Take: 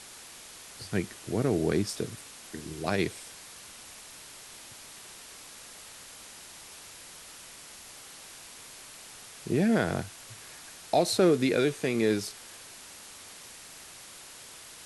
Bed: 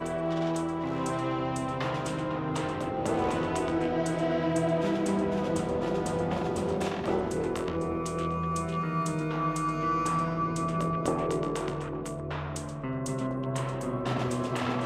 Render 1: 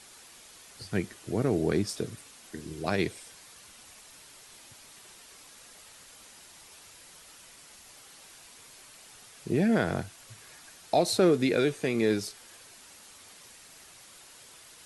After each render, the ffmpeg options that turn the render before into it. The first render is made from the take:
-af "afftdn=nr=6:nf=-48"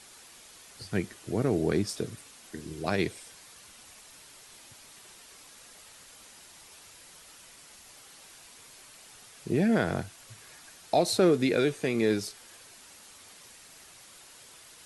-af anull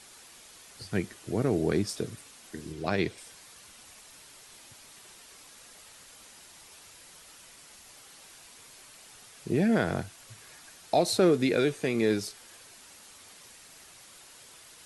-filter_complex "[0:a]asettb=1/sr,asplit=3[s0][s1][s2];[s0]atrim=end=2.724[s3];[s1]atrim=start=2.72:end=3.18,asetpts=PTS-STARTPTS,afade=t=in:d=0.004:c=qsin,afade=t=out:st=0.456:d=0.004:c=qsin,acrossover=split=6000[s4][s5];[s5]acompressor=threshold=0.001:ratio=4:attack=1:release=60[s6];[s4][s6]amix=inputs=2:normalize=0[s7];[s2]atrim=start=3.176[s8];[s3][s7]acrossfade=d=0.004:c1=hsin:c2=qsin[s9];[s9][s8]acrossfade=d=0.004:c1=qsin:c2=hsin"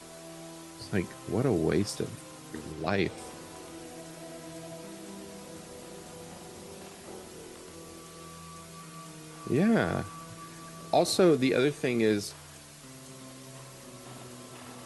-filter_complex "[1:a]volume=0.141[s0];[0:a][s0]amix=inputs=2:normalize=0"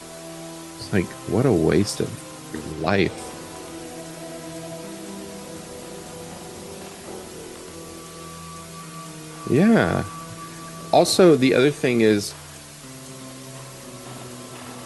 -af "volume=2.66"

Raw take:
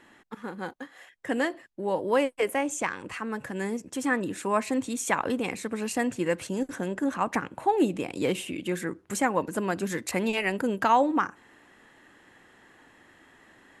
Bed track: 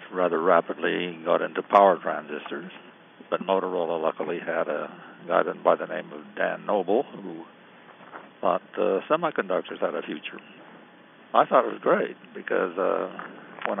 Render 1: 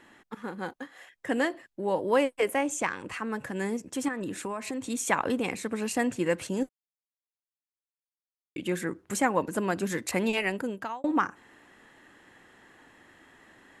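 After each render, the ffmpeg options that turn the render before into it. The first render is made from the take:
-filter_complex "[0:a]asettb=1/sr,asplit=3[s0][s1][s2];[s0]atrim=end=4.084[s3];[s1]atrim=start=4.08:end=4.9,asetpts=PTS-STARTPTS,afade=t=in:d=0.004:c=qsin,afade=t=out:st=0.816:d=0.004:c=qsin,acompressor=threshold=0.0355:ratio=12:attack=3.2:release=140:knee=1:detection=peak[s4];[s2]atrim=start=4.896[s5];[s3][s4]acrossfade=d=0.004:c1=hsin:c2=qsin[s6];[s6][s5]acrossfade=d=0.004:c1=qsin:c2=hsin,asplit=4[s7][s8][s9][s10];[s7]atrim=end=6.69,asetpts=PTS-STARTPTS,afade=t=out:st=6.686:d=0.004:c=hsin[s11];[s8]atrim=start=6.69:end=8.56,asetpts=PTS-STARTPTS,volume=0[s12];[s9]atrim=start=8.56:end=11.04,asetpts=PTS-STARTPTS,afade=t=in:d=0.004:c=hsin,afade=t=out:st=1.81:d=0.67[s13];[s10]atrim=start=11.04,asetpts=PTS-STARTPTS,afade=t=in:d=0.004:c=hsin[s14];[s11][s12][s13][s14]concat=n=4:v=0:a=1"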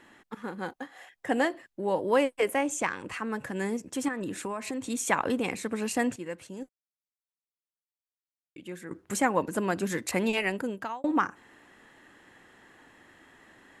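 -filter_complex "[0:a]asettb=1/sr,asplit=3[s0][s1][s2];[s0]atrim=end=0.734[s3];[s1]atrim=start=0.73:end=1.48,asetpts=PTS-STARTPTS,afade=t=in:d=0.004:c=qsin,afade=t=out:st=0.746:d=0.004:c=qsin,equalizer=f=770:w=3.8:g=7.5[s4];[s2]atrim=start=1.476[s5];[s3][s4]acrossfade=d=0.004:c1=hsin:c2=qsin[s6];[s6][s5]acrossfade=d=0.004:c1=qsin:c2=hsin,asplit=3[s7][s8][s9];[s7]atrim=end=6.162[s10];[s8]atrim=start=6.158:end=8.912,asetpts=PTS-STARTPTS,volume=0.299[s11];[s9]atrim=start=8.908[s12];[s10][s11]acrossfade=d=0.004:c1=hsin:c2=hsin[s13];[s13][s12]acrossfade=d=0.004:c1=hsin:c2=hsin"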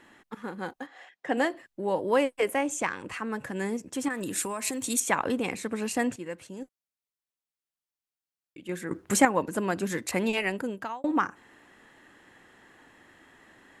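-filter_complex "[0:a]asplit=3[s0][s1][s2];[s0]afade=t=out:st=0.86:d=0.02[s3];[s1]highpass=200,lowpass=5500,afade=t=in:st=0.86:d=0.02,afade=t=out:st=1.36:d=0.02[s4];[s2]afade=t=in:st=1.36:d=0.02[s5];[s3][s4][s5]amix=inputs=3:normalize=0,asettb=1/sr,asplit=3[s6][s7][s8];[s6]atrim=end=4.104[s9];[s7]atrim=start=4.1:end=5,asetpts=PTS-STARTPTS,afade=t=in:d=0.004:c=qsin,afade=t=out:st=0.896:d=0.004:c=qsin,aemphasis=mode=production:type=75kf[s10];[s8]atrim=start=4.996[s11];[s9][s10]acrossfade=d=0.004:c1=hsin:c2=qsin[s12];[s12][s11]acrossfade=d=0.004:c1=qsin:c2=hsin,asplit=3[s13][s14][s15];[s13]atrim=end=8.692[s16];[s14]atrim=start=8.688:end=9.252,asetpts=PTS-STARTPTS,volume=2.11[s17];[s15]atrim=start=9.248[s18];[s16][s17]acrossfade=d=0.004:c1=hsin:c2=hsin[s19];[s19][s18]acrossfade=d=0.004:c1=hsin:c2=hsin"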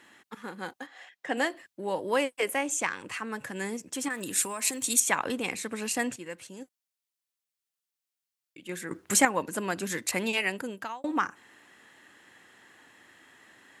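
-af "highpass=81,tiltshelf=f=1500:g=-4.5"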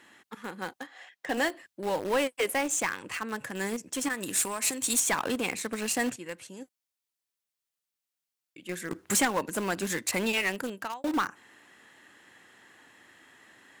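-filter_complex "[0:a]asplit=2[s0][s1];[s1]acrusher=bits=4:mix=0:aa=0.000001,volume=0.398[s2];[s0][s2]amix=inputs=2:normalize=0,asoftclip=type=tanh:threshold=0.1"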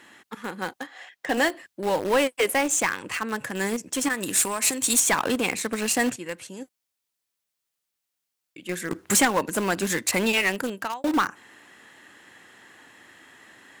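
-af "volume=1.88"

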